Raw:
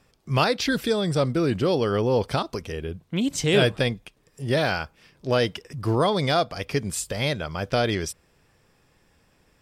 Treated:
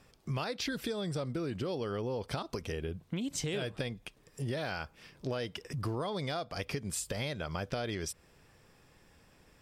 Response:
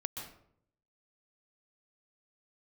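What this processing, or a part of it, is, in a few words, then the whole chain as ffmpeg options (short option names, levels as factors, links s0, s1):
serial compression, leveller first: -af "acompressor=threshold=0.0562:ratio=2,acompressor=threshold=0.02:ratio=4"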